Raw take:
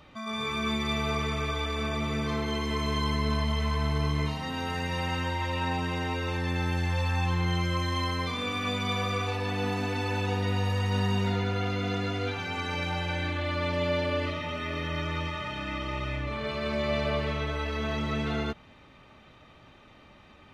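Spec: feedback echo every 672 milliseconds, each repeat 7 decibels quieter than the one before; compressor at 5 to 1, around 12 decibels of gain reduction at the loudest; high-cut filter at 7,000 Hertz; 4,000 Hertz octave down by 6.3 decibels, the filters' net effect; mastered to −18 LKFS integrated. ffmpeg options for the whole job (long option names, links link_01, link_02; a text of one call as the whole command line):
ffmpeg -i in.wav -af "lowpass=7000,equalizer=frequency=4000:width_type=o:gain=-8,acompressor=threshold=-38dB:ratio=5,aecho=1:1:672|1344|2016|2688|3360:0.447|0.201|0.0905|0.0407|0.0183,volume=22dB" out.wav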